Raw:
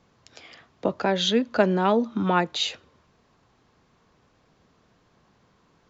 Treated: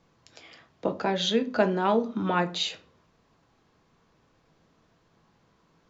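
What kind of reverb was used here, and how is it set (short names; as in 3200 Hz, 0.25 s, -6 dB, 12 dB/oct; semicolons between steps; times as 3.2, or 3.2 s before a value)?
shoebox room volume 220 m³, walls furnished, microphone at 0.68 m; gain -3.5 dB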